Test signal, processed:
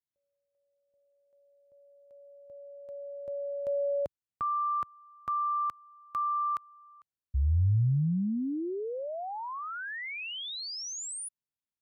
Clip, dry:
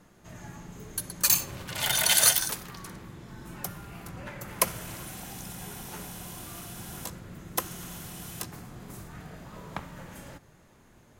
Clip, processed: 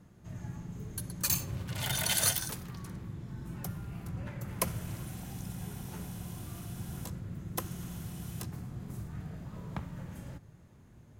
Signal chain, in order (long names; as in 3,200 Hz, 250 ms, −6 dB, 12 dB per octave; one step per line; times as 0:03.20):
parametric band 97 Hz +14.5 dB 2.8 octaves
level −8 dB